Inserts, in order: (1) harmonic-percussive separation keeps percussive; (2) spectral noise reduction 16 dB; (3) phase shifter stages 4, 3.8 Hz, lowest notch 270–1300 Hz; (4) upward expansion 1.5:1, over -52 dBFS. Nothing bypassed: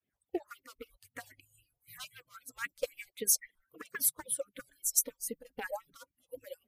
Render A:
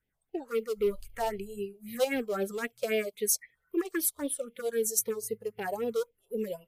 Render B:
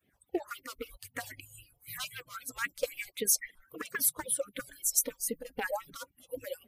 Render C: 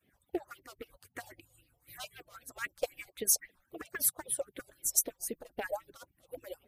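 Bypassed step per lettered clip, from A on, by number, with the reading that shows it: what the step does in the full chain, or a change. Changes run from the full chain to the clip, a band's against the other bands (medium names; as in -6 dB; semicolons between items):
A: 1, 8 kHz band -10.0 dB; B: 4, 8 kHz band -2.5 dB; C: 2, 1 kHz band +1.5 dB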